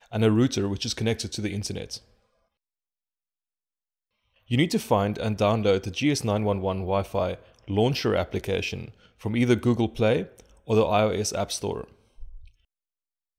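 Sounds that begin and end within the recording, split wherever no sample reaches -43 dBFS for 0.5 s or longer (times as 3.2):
4.5–12.48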